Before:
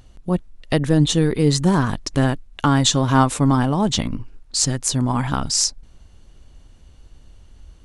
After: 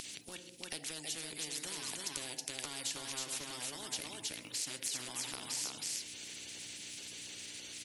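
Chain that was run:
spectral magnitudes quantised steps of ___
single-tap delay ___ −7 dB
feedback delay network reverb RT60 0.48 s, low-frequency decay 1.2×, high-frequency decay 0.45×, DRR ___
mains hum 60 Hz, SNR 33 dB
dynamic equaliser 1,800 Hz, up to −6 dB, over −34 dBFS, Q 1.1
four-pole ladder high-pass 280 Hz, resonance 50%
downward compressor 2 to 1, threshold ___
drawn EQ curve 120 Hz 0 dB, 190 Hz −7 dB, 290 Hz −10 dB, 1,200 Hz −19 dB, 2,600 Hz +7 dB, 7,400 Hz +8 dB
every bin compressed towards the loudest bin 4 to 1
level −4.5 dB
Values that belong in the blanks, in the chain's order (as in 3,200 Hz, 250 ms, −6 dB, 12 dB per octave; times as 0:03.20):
30 dB, 320 ms, 13 dB, −37 dBFS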